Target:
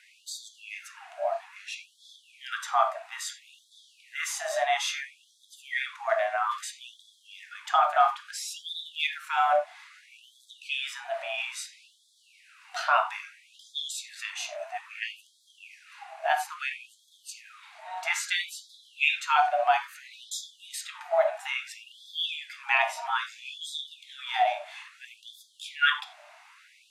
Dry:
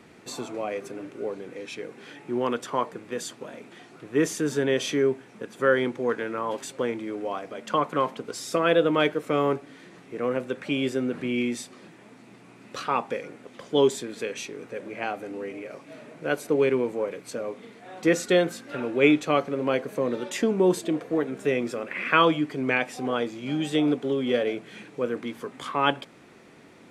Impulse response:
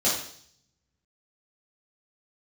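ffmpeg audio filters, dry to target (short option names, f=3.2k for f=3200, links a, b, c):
-filter_complex "[0:a]afreqshift=180,asplit=2[a][b];[b]aemphasis=mode=reproduction:type=bsi[c];[1:a]atrim=start_sample=2205,afade=t=out:st=0.15:d=0.01,atrim=end_sample=7056[d];[c][d]afir=irnorm=-1:irlink=0,volume=-13.5dB[e];[a][e]amix=inputs=2:normalize=0,afftfilt=real='re*gte(b*sr/1024,590*pow(3300/590,0.5+0.5*sin(2*PI*0.6*pts/sr)))':imag='im*gte(b*sr/1024,590*pow(3300/590,0.5+0.5*sin(2*PI*0.6*pts/sr)))':win_size=1024:overlap=0.75"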